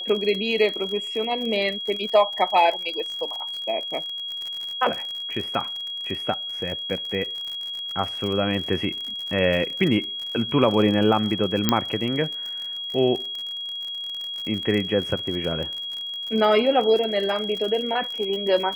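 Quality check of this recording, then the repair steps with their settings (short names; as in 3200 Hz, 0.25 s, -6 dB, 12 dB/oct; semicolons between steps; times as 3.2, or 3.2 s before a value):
crackle 54/s -29 dBFS
tone 3300 Hz -29 dBFS
11.69 pop -3 dBFS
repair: de-click; notch 3300 Hz, Q 30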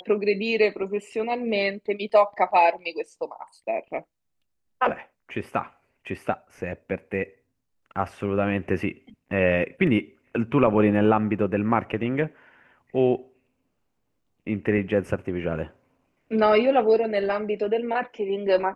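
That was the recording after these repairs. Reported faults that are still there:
none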